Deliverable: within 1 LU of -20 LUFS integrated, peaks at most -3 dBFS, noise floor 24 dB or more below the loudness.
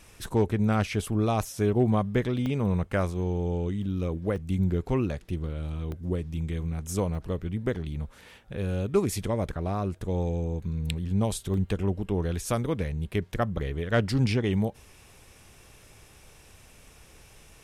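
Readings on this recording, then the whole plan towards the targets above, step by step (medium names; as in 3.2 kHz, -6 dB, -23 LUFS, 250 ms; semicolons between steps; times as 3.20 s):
dropouts 6; longest dropout 1.1 ms; loudness -28.5 LUFS; peak level -12.0 dBFS; loudness target -20.0 LUFS
-> interpolate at 2.46/3.83/4.36/5.92/7.15/11.54 s, 1.1 ms; trim +8.5 dB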